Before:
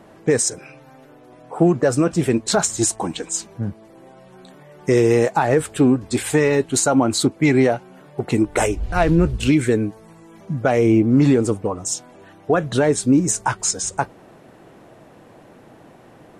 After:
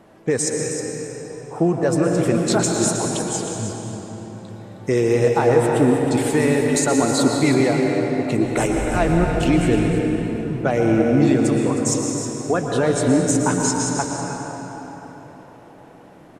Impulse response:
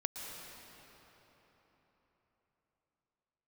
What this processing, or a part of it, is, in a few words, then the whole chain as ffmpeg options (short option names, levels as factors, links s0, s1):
cave: -filter_complex "[0:a]asettb=1/sr,asplit=3[s0][s1][s2];[s0]atrim=end=11.274[s3];[s1]atrim=start=11.27:end=11.94,asetpts=PTS-STARTPTS,afade=t=in:d=0.004:c=qsin,afade=t=out:st=0.666:d=0.004:c=qsin,tiltshelf=f=820:g=-4[s4];[s2]atrim=start=11.936[s5];[s3][s4]acrossfade=d=0.004:c1=hsin:c2=qsin[s6];[s6][s5]acrossfade=d=0.004:c1=qsin:c2=hsin,aecho=1:1:314:0.299[s7];[1:a]atrim=start_sample=2205[s8];[s7][s8]afir=irnorm=-1:irlink=0,volume=0.794"